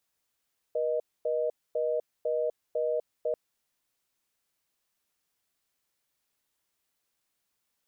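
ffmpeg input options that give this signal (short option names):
-f lavfi -i "aevalsrc='0.0376*(sin(2*PI*480*t)+sin(2*PI*620*t))*clip(min(mod(t,0.5),0.25-mod(t,0.5))/0.005,0,1)':d=2.59:s=44100"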